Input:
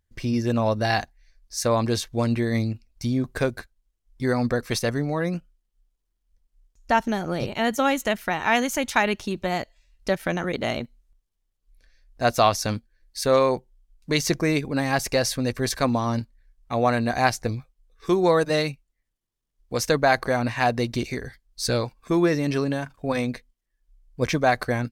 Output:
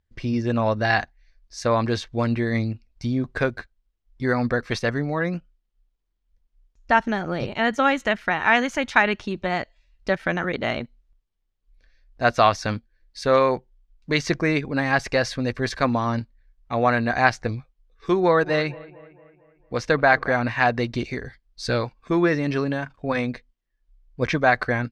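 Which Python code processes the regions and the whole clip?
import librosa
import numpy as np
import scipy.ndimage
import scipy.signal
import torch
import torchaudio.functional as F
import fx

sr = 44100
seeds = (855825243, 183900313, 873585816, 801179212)

y = fx.chain(x, sr, fx.high_shelf(hz=6500.0, db=-8.5),
    fx.echo_bbd(ms=226, stages=4096, feedback_pct=52, wet_db=-19.5), at=(18.2, 20.32))
y = fx.dynamic_eq(y, sr, hz=1600.0, q=1.3, threshold_db=-37.0, ratio=4.0, max_db=6)
y = scipy.signal.sosfilt(scipy.signal.butter(2, 4300.0, 'lowpass', fs=sr, output='sos'), y)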